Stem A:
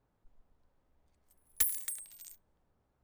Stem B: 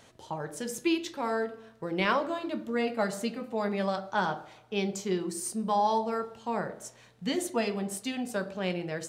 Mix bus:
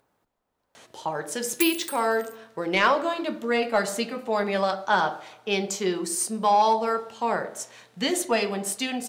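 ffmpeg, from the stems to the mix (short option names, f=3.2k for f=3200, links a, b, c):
-filter_complex "[0:a]acompressor=mode=upward:threshold=-57dB:ratio=2.5,volume=1.5dB[a];[1:a]acontrast=88,adelay=750,volume=1.5dB[b];[a][b]amix=inputs=2:normalize=0,highpass=f=460:p=1,asoftclip=type=tanh:threshold=-8dB"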